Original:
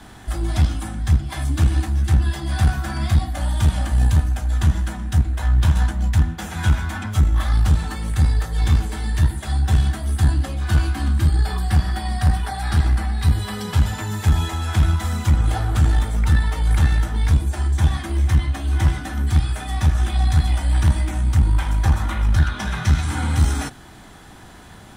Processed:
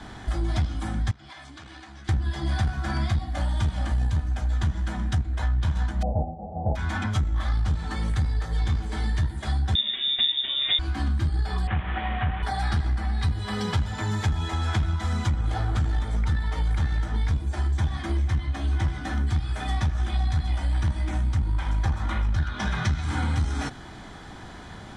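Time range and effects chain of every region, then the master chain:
0:01.11–0:02.09: high-pass filter 1,200 Hz 6 dB per octave + high-frequency loss of the air 63 metres + downward compressor 8 to 1, threshold −41 dBFS
0:06.01–0:06.75: spectral envelope flattened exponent 0.3 + Chebyshev low-pass with heavy ripple 870 Hz, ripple 3 dB + comb filter 1.6 ms, depth 62%
0:09.75–0:10.79: double-tracking delay 35 ms −7 dB + voice inversion scrambler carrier 3,600 Hz
0:11.67–0:12.43: linear delta modulator 16 kbit/s, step −26.5 dBFS + high-pass filter 93 Hz 6 dB per octave + parametric band 210 Hz −4 dB 2.5 octaves
whole clip: low-pass filter 5,800 Hz 12 dB per octave; notch filter 2,700 Hz, Q 14; downward compressor 4 to 1, threshold −24 dBFS; level +1.5 dB

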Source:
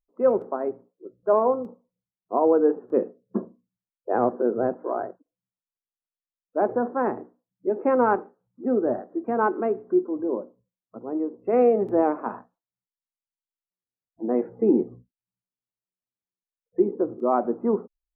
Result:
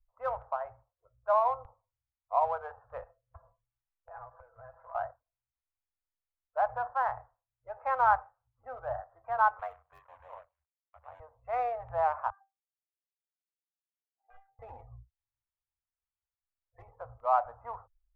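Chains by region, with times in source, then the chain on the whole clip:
0:03.03–0:04.95: comb filter 6 ms, depth 76% + dynamic equaliser 720 Hz, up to −6 dB, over −36 dBFS, Q 1.9 + downward compressor 16 to 1, threshold −35 dBFS
0:09.59–0:11.20: mu-law and A-law mismatch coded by A + high-pass filter 490 Hz 6 dB per octave + ring modulation 46 Hz
0:12.30–0:14.59: auto-filter band-pass sine 4.8 Hz 410–1,800 Hz + hard clipping −21.5 dBFS + stiff-string resonator 390 Hz, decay 0.2 s, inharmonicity 0.002
whole clip: adaptive Wiener filter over 9 samples; inverse Chebyshev band-stop filter 160–400 Hz, stop band 50 dB; bass and treble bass +14 dB, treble −13 dB

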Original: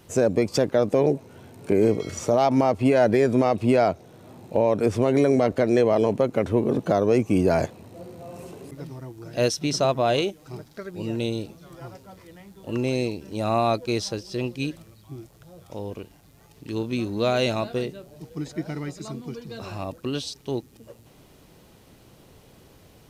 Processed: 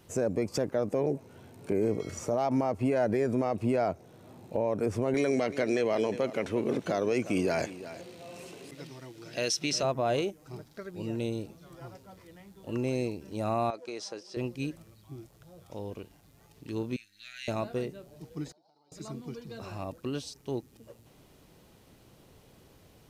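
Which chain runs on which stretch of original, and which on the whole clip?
0:05.14–0:09.83: meter weighting curve D + single-tap delay 355 ms −16.5 dB
0:13.70–0:14.37: band-pass filter 390–7,400 Hz + downward compressor 5 to 1, threshold −27 dBFS
0:16.96–0:17.48: gain on one half-wave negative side −3 dB + elliptic high-pass filter 1,700 Hz + spectral tilt −1.5 dB per octave
0:18.52–0:18.92: pair of resonant band-passes 1,900 Hz, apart 2.4 octaves + downward compressor 10 to 1, threshold −58 dBFS
whole clip: dynamic equaliser 3,600 Hz, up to −7 dB, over −49 dBFS, Q 1.7; brickwall limiter −13 dBFS; level −5.5 dB

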